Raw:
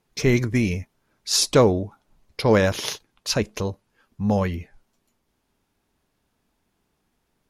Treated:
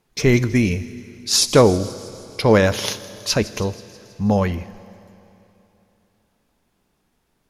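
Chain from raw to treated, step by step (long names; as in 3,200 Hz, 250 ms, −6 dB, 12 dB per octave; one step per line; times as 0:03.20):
on a send: delay with a high-pass on its return 161 ms, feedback 62%, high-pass 4,700 Hz, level −15 dB
on the sum: four-comb reverb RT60 3.1 s, combs from 25 ms, DRR 16 dB
level +3.5 dB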